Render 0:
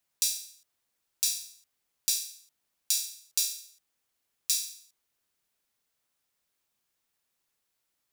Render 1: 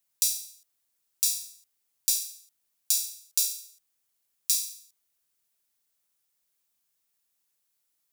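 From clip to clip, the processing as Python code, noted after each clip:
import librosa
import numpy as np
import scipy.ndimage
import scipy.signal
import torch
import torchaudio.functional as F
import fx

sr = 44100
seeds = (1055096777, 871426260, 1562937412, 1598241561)

y = fx.high_shelf(x, sr, hz=5100.0, db=10.5)
y = y * librosa.db_to_amplitude(-5.0)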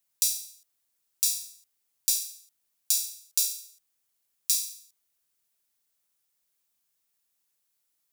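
y = x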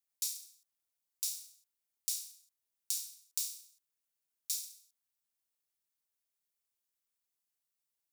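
y = x * np.sin(2.0 * np.pi * 190.0 * np.arange(len(x)) / sr)
y = y * librosa.db_to_amplitude(-8.0)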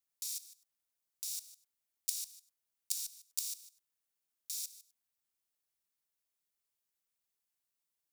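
y = fx.level_steps(x, sr, step_db=16)
y = y * librosa.db_to_amplitude(8.5)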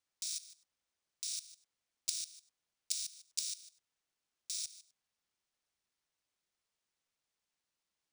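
y = np.repeat(scipy.signal.resample_poly(x, 1, 3), 3)[:len(x)]
y = y * librosa.db_to_amplitude(5.0)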